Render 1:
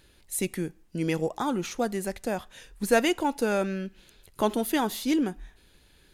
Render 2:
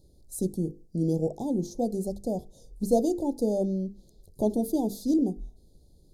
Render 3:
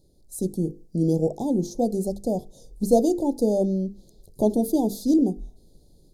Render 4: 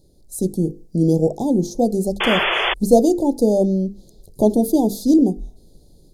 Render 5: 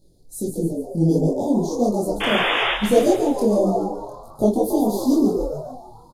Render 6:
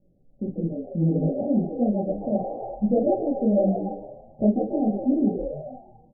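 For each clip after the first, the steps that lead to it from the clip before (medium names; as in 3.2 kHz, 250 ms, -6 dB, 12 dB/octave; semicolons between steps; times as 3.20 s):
inverse Chebyshev band-stop 1.2–2.7 kHz, stop band 50 dB; tone controls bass +5 dB, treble -7 dB; hum notches 50/100/150/200/250/300/350/400/450/500 Hz
peaking EQ 61 Hz -6.5 dB 1.3 oct; level rider gain up to 5 dB
painted sound noise, 2.20–2.74 s, 330–3500 Hz -25 dBFS; trim +5.5 dB
doubling 24 ms -5 dB; frequency-shifting echo 141 ms, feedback 50%, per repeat +110 Hz, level -7.5 dB; detune thickener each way 55 cents
rippled Chebyshev low-pass 810 Hz, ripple 9 dB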